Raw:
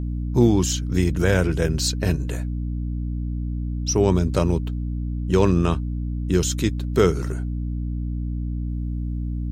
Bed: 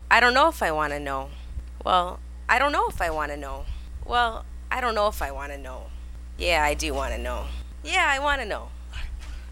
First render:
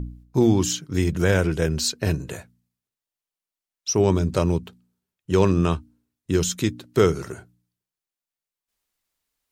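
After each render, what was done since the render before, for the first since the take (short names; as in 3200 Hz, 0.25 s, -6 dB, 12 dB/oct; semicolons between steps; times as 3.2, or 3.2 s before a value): de-hum 60 Hz, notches 5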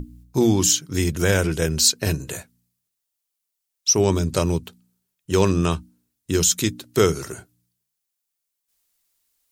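high shelf 4100 Hz +12 dB; notches 60/120/180 Hz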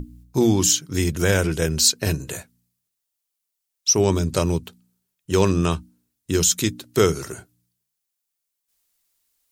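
nothing audible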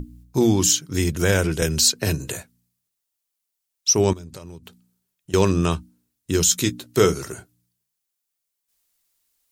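1.62–2.32 three-band squash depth 40%; 4.13–5.34 compressor, threshold -36 dBFS; 6.47–7.14 doubler 16 ms -8.5 dB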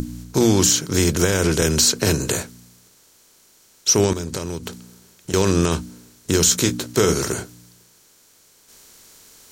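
per-bin compression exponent 0.6; limiter -5 dBFS, peak gain reduction 5 dB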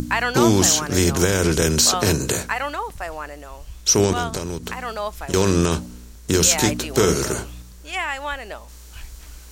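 add bed -4.5 dB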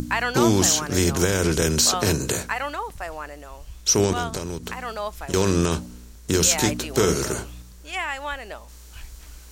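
gain -2.5 dB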